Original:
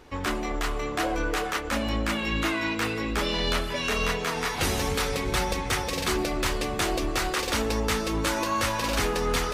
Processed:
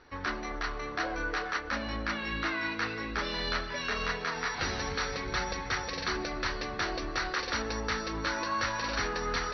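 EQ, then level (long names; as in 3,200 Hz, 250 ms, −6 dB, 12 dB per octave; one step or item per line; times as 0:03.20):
Chebyshev low-pass with heavy ripple 5,900 Hz, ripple 9 dB
0.0 dB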